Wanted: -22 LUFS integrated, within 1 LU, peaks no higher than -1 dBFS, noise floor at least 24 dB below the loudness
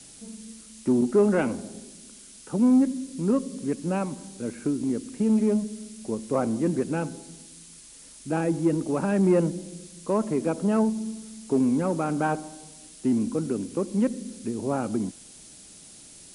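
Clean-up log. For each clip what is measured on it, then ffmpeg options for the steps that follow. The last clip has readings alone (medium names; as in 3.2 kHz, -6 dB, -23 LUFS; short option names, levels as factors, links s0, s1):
noise floor -48 dBFS; noise floor target -50 dBFS; loudness -26.0 LUFS; peak level -11.0 dBFS; loudness target -22.0 LUFS
-> -af "afftdn=nr=6:nf=-48"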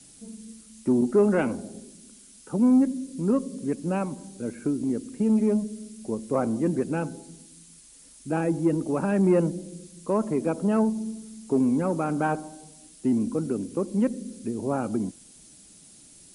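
noise floor -52 dBFS; loudness -26.0 LUFS; peak level -11.0 dBFS; loudness target -22.0 LUFS
-> -af "volume=1.58"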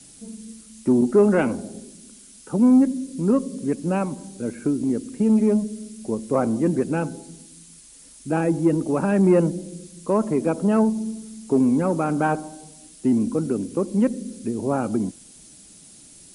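loudness -22.0 LUFS; peak level -7.0 dBFS; noise floor -48 dBFS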